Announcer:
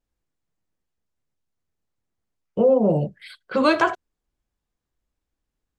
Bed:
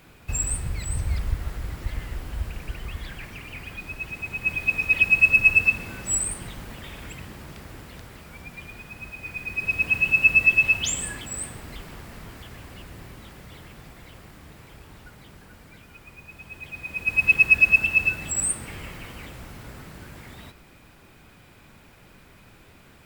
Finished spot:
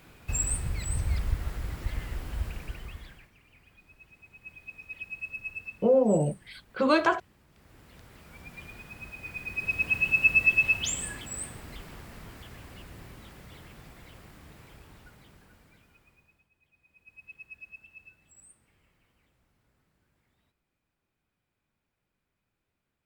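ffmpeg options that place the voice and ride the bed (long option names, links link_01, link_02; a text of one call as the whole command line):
ffmpeg -i stem1.wav -i stem2.wav -filter_complex "[0:a]adelay=3250,volume=-4.5dB[link_01];[1:a]volume=14.5dB,afade=type=out:start_time=2.47:duration=0.83:silence=0.112202,afade=type=in:start_time=7.5:duration=1.11:silence=0.141254,afade=type=out:start_time=14.64:duration=1.85:silence=0.0473151[link_02];[link_01][link_02]amix=inputs=2:normalize=0" out.wav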